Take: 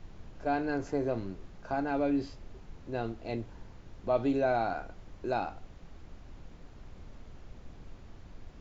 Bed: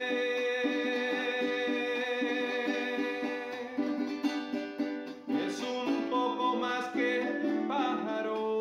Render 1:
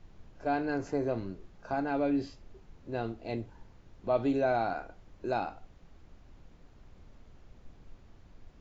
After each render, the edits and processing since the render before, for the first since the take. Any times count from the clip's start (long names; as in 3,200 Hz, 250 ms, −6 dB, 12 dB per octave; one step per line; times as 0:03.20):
noise reduction from a noise print 6 dB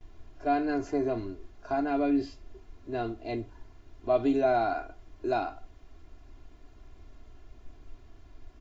noise gate with hold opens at −50 dBFS
comb filter 2.9 ms, depth 79%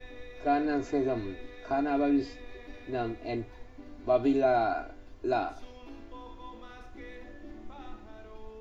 mix in bed −17.5 dB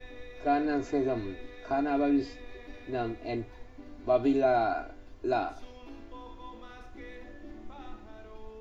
no processing that can be heard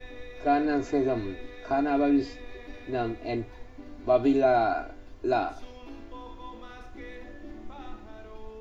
level +3 dB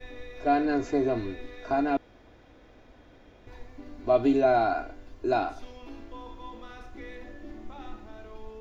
0:01.97–0:03.47: fill with room tone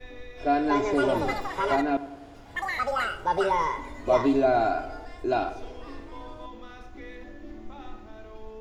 feedback echo with a low-pass in the loop 96 ms, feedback 64%, level −15 dB
delay with pitch and tempo change per echo 373 ms, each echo +6 semitones, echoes 3